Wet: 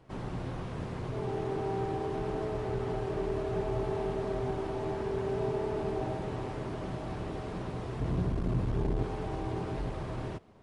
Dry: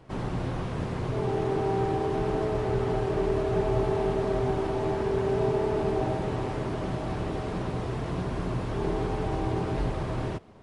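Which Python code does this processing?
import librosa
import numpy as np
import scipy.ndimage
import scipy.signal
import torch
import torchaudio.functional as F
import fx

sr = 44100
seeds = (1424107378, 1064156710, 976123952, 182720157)

y = fx.low_shelf(x, sr, hz=280.0, db=11.0, at=(8.0, 9.03))
y = fx.transformer_sat(y, sr, knee_hz=130.0)
y = F.gain(torch.from_numpy(y), -6.0).numpy()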